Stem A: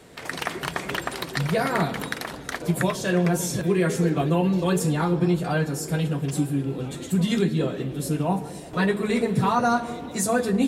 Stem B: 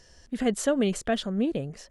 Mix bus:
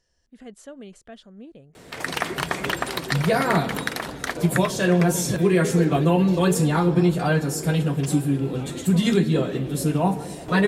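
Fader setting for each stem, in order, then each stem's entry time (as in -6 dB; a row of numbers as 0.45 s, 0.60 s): +3.0 dB, -16.5 dB; 1.75 s, 0.00 s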